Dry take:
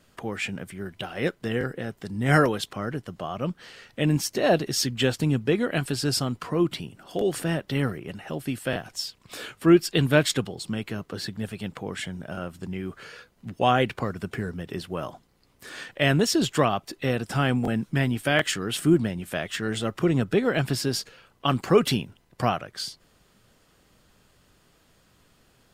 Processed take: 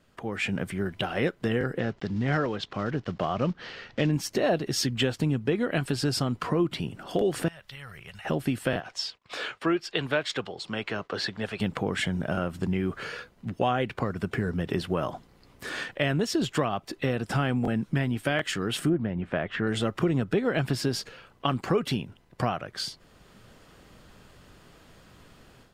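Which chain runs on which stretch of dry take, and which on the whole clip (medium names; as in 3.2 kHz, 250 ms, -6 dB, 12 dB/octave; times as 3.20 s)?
1.79–4.13 s: block-companded coder 5-bit + low-pass 5.8 kHz 24 dB/octave
7.48–8.25 s: amplifier tone stack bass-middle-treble 10-0-10 + compression 8:1, threshold -46 dBFS
8.80–11.60 s: three-band isolator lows -13 dB, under 440 Hz, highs -17 dB, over 6.7 kHz + expander -54 dBFS
18.89–19.67 s: low-pass 2 kHz + loudspeaker Doppler distortion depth 0.1 ms
whole clip: level rider; treble shelf 4.9 kHz -8.5 dB; compression 3:1, threshold -21 dBFS; trim -3 dB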